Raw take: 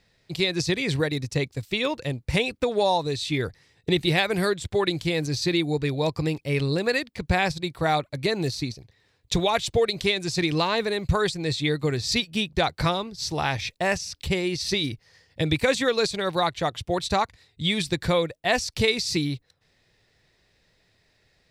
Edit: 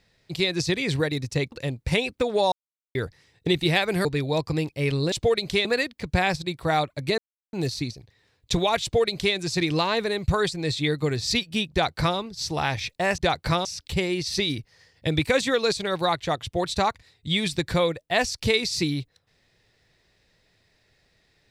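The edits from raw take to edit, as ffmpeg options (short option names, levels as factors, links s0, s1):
-filter_complex "[0:a]asplit=10[s0][s1][s2][s3][s4][s5][s6][s7][s8][s9];[s0]atrim=end=1.522[s10];[s1]atrim=start=1.938:end=2.94,asetpts=PTS-STARTPTS,afade=t=out:st=0.998:d=0.004:c=hsin[s11];[s2]atrim=start=2.94:end=3.37,asetpts=PTS-STARTPTS,volume=0[s12];[s3]atrim=start=3.37:end=4.472,asetpts=PTS-STARTPTS,afade=t=in:d=0.004:c=hsin[s13];[s4]atrim=start=5.738:end=6.812[s14];[s5]atrim=start=9.628:end=10.162[s15];[s6]atrim=start=6.808:end=8.34,asetpts=PTS-STARTPTS,afade=t=out:st=1.528:d=0.004:c=hsin,apad=pad_dur=0.35[s16];[s7]atrim=start=8.34:end=13.992,asetpts=PTS-STARTPTS,afade=t=in:d=0.004:c=hsin[s17];[s8]atrim=start=12.518:end=12.992[s18];[s9]atrim=start=13.988[s19];[s11][s12][s13]concat=n=3:v=0:a=1[s20];[s10][s20]acrossfade=d=0.004:c1=hsin:c2=hsin[s21];[s21][s14]acrossfade=d=0.004:c1=hsin:c2=hsin[s22];[s22][s15]acrossfade=d=0.004:c1=hsin:c2=hsin[s23];[s16][s17]concat=n=2:v=0:a=1[s24];[s23][s24]acrossfade=d=0.004:c1=hsin:c2=hsin[s25];[s25][s18]acrossfade=d=0.004:c1=hsin:c2=hsin[s26];[s26][s19]acrossfade=d=0.004:c1=hsin:c2=hsin"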